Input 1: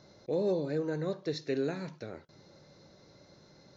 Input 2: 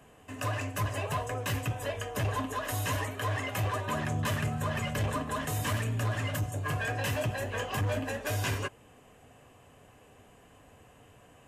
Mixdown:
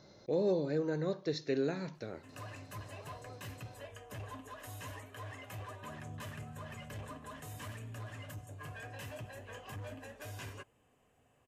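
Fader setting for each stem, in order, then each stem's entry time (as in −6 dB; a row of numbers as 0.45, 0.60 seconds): −1.0, −14.5 decibels; 0.00, 1.95 seconds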